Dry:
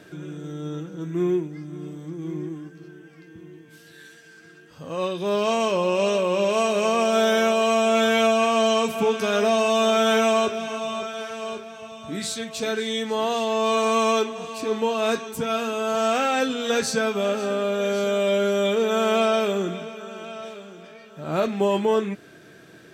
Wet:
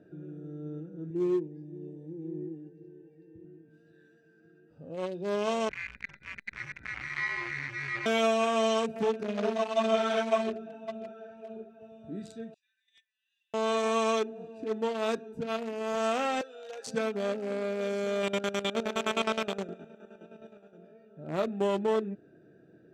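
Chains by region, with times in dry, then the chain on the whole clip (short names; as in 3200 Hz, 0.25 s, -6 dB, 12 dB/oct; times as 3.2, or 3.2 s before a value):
1.1–3.45 Butterworth band-stop 1300 Hz, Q 2.2 + comb 2.2 ms, depth 61%
5.69–8.06 inverted band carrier 2600 Hz + resonator 69 Hz, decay 0.17 s, mix 90% + core saturation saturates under 1100 Hz
9.23–11.81 LPF 4000 Hz 6 dB/oct + doubler 48 ms -3 dB + ensemble effect
12.54–13.54 steep high-pass 1700 Hz 72 dB/oct + gate -30 dBFS, range -20 dB
16.41–16.87 high shelf 4200 Hz +7.5 dB + compressor 3:1, threshold -23 dBFS + HPF 540 Hz 24 dB/oct
18.22–20.76 spectral limiter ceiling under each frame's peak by 13 dB + chopper 9.6 Hz, depth 65% + thinning echo 0.118 s, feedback 61%, high-pass 830 Hz, level -12.5 dB
whole clip: Wiener smoothing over 41 samples; LPF 11000 Hz 12 dB/oct; low shelf 130 Hz -6.5 dB; gain -5 dB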